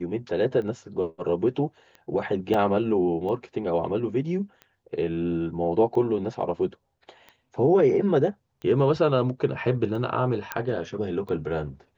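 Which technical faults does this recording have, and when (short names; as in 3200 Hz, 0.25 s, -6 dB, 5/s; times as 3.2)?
tick 45 rpm -28 dBFS
2.54 gap 3.6 ms
10.52 pop -12 dBFS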